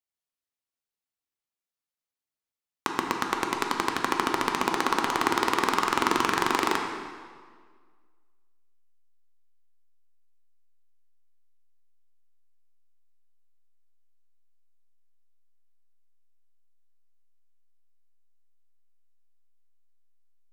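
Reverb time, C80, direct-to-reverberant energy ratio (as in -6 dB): 1.7 s, 5.0 dB, 1.5 dB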